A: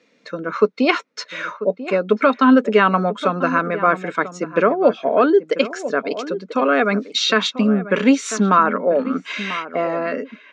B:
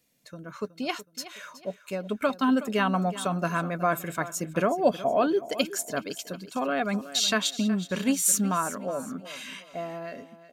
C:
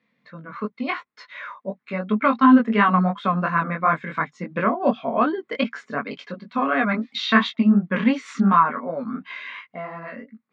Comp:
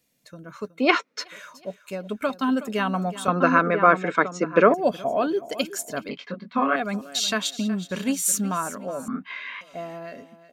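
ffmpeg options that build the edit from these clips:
-filter_complex "[0:a]asplit=2[a][b];[2:a]asplit=2[c][d];[1:a]asplit=5[e][f][g][h][i];[e]atrim=end=0.94[j];[a]atrim=start=0.7:end=1.4[k];[f]atrim=start=1.16:end=3.282[l];[b]atrim=start=3.278:end=4.742[m];[g]atrim=start=4.738:end=6.092[n];[c]atrim=start=6.088:end=6.762[o];[h]atrim=start=6.758:end=9.082[p];[d]atrim=start=9.078:end=9.612[q];[i]atrim=start=9.608[r];[j][k]acrossfade=d=0.24:c1=tri:c2=tri[s];[s][l]acrossfade=d=0.24:c1=tri:c2=tri[t];[t][m]acrossfade=d=0.004:c1=hsin:c2=hsin[u];[u][n]acrossfade=d=0.004:c1=hsin:c2=hsin[v];[v][o]acrossfade=d=0.004:c1=hsin:c2=hsin[w];[w][p]acrossfade=d=0.004:c1=hsin:c2=hsin[x];[x][q]acrossfade=d=0.004:c1=hsin:c2=hsin[y];[y][r]acrossfade=d=0.004:c1=hsin:c2=hsin"

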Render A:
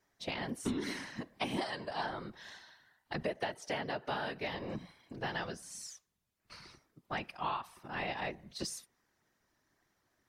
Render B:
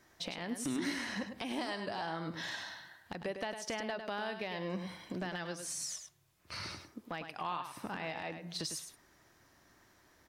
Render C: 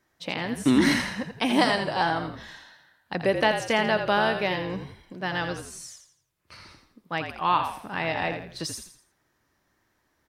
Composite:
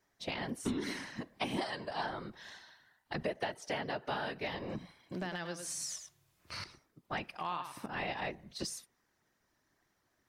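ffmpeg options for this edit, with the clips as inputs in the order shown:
-filter_complex "[1:a]asplit=2[a][b];[0:a]asplit=3[c][d][e];[c]atrim=end=5.122[f];[a]atrim=start=5.118:end=6.642[g];[d]atrim=start=6.638:end=7.382[h];[b]atrim=start=7.378:end=7.862[i];[e]atrim=start=7.858[j];[f][g]acrossfade=d=0.004:c1=hsin:c2=hsin[k];[k][h]acrossfade=d=0.004:c1=hsin:c2=hsin[l];[l][i]acrossfade=d=0.004:c1=hsin:c2=hsin[m];[m][j]acrossfade=d=0.004:c1=hsin:c2=hsin"

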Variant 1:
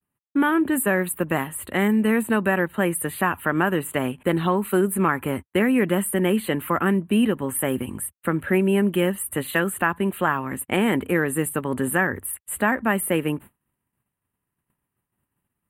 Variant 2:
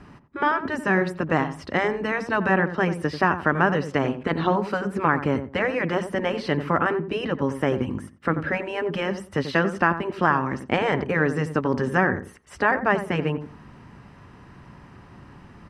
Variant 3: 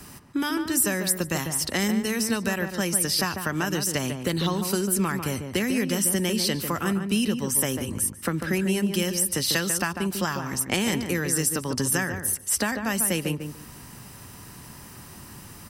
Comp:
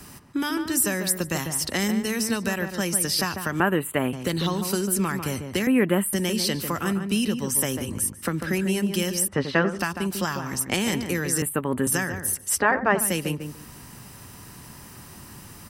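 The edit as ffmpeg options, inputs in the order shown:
-filter_complex "[0:a]asplit=3[a][b][c];[1:a]asplit=2[d][e];[2:a]asplit=6[f][g][h][i][j][k];[f]atrim=end=3.602[l];[a]atrim=start=3.598:end=4.132[m];[g]atrim=start=4.128:end=5.672[n];[b]atrim=start=5.668:end=6.132[o];[h]atrim=start=6.128:end=9.282[p];[d]atrim=start=9.278:end=9.792[q];[i]atrim=start=9.788:end=11.422[r];[c]atrim=start=11.418:end=11.872[s];[j]atrim=start=11.868:end=12.61[t];[e]atrim=start=12.57:end=13.02[u];[k]atrim=start=12.98[v];[l][m]acrossfade=d=0.004:c1=hsin:c2=hsin[w];[w][n]acrossfade=d=0.004:c1=hsin:c2=hsin[x];[x][o]acrossfade=d=0.004:c1=hsin:c2=hsin[y];[y][p]acrossfade=d=0.004:c1=hsin:c2=hsin[z];[z][q]acrossfade=d=0.004:c1=hsin:c2=hsin[aa];[aa][r]acrossfade=d=0.004:c1=hsin:c2=hsin[ab];[ab][s]acrossfade=d=0.004:c1=hsin:c2=hsin[ac];[ac][t]acrossfade=d=0.004:c1=hsin:c2=hsin[ad];[ad][u]acrossfade=d=0.04:c1=tri:c2=tri[ae];[ae][v]acrossfade=d=0.04:c1=tri:c2=tri"

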